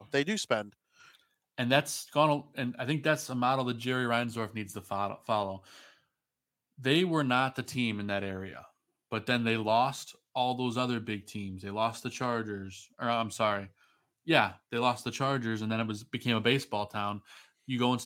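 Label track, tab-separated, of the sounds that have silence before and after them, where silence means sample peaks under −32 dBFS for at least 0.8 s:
1.580000	5.540000	sound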